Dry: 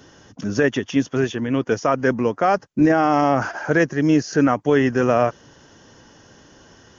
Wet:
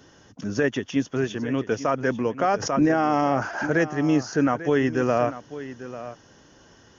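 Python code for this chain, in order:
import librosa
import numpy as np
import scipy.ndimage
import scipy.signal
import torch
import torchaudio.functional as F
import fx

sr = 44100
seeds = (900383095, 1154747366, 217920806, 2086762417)

y = x + 10.0 ** (-14.0 / 20.0) * np.pad(x, (int(844 * sr / 1000.0), 0))[:len(x)]
y = fx.pre_swell(y, sr, db_per_s=69.0, at=(2.39, 3.65), fade=0.02)
y = F.gain(torch.from_numpy(y), -4.5).numpy()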